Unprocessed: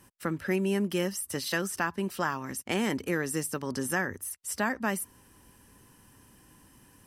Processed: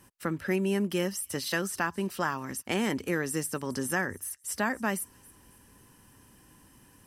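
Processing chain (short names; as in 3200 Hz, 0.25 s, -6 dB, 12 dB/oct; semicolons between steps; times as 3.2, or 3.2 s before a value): thin delay 0.273 s, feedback 40%, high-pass 4500 Hz, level -20 dB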